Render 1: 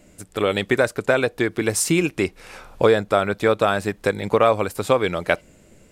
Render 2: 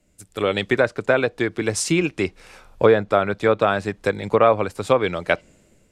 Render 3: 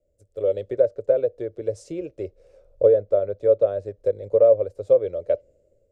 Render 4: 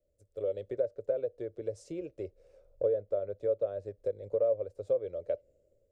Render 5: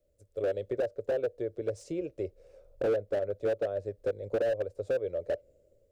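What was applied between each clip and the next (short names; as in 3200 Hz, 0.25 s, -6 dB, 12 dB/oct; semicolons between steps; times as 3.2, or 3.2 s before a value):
treble ducked by the level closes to 3000 Hz, closed at -12.5 dBFS; three-band expander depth 40%
EQ curve 100 Hz 0 dB, 190 Hz -14 dB, 300 Hz -8 dB, 560 Hz +12 dB, 830 Hz -18 dB, 2500 Hz -21 dB, 6500 Hz -15 dB, 11000 Hz -21 dB; gain -7 dB
compressor 1.5:1, threshold -28 dBFS, peak gain reduction 6.5 dB; gain -7 dB
slew limiter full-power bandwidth 17 Hz; gain +4.5 dB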